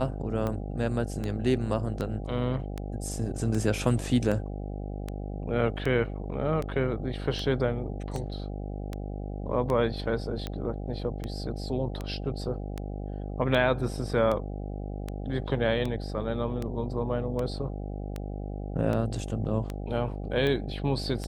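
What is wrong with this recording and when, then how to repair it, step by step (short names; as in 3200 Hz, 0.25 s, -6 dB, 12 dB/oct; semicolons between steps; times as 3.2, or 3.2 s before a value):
buzz 50 Hz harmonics 16 -35 dBFS
tick 78 rpm -19 dBFS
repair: de-click; de-hum 50 Hz, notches 16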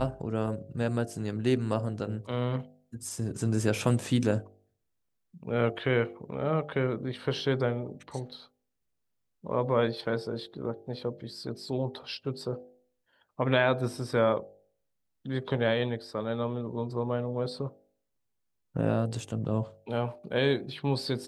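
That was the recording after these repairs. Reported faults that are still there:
none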